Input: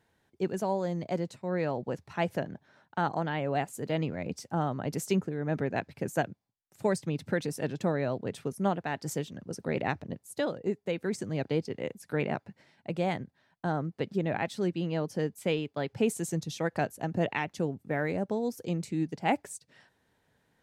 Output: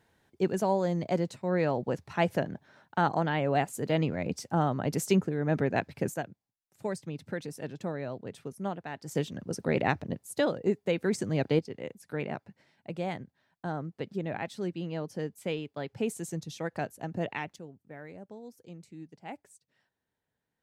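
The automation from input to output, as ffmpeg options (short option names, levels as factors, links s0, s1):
-af "asetnsamples=n=441:p=0,asendcmd='6.14 volume volume -6dB;9.15 volume volume 3.5dB;11.59 volume volume -4dB;17.56 volume volume -15dB',volume=1.41"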